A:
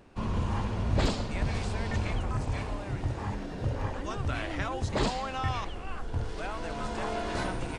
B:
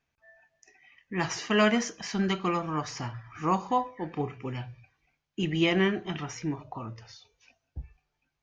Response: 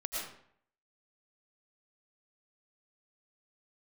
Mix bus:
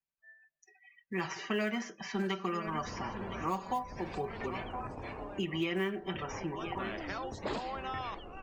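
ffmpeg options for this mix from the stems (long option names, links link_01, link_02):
-filter_complex "[0:a]adelay=2500,volume=-4.5dB[link_01];[1:a]aecho=1:1:5.2:0.71,acrusher=bits=6:mode=log:mix=0:aa=0.000001,volume=-2.5dB,asplit=3[link_02][link_03][link_04];[link_03]volume=-16.5dB[link_05];[link_04]apad=whole_len=453473[link_06];[link_01][link_06]sidechaincompress=threshold=-34dB:ratio=8:attack=6.5:release=227[link_07];[link_05]aecho=0:1:1013|2026|3039|4052|5065:1|0.33|0.109|0.0359|0.0119[link_08];[link_07][link_02][link_08]amix=inputs=3:normalize=0,afftdn=noise_reduction=20:noise_floor=-51,acrossover=split=220|3200[link_09][link_10][link_11];[link_09]acompressor=threshold=-49dB:ratio=4[link_12];[link_10]acompressor=threshold=-32dB:ratio=4[link_13];[link_11]acompressor=threshold=-53dB:ratio=4[link_14];[link_12][link_13][link_14]amix=inputs=3:normalize=0"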